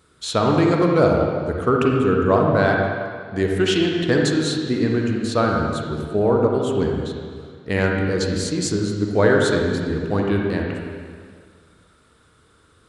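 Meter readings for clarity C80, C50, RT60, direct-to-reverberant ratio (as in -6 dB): 2.5 dB, 0.5 dB, 1.9 s, -0.5 dB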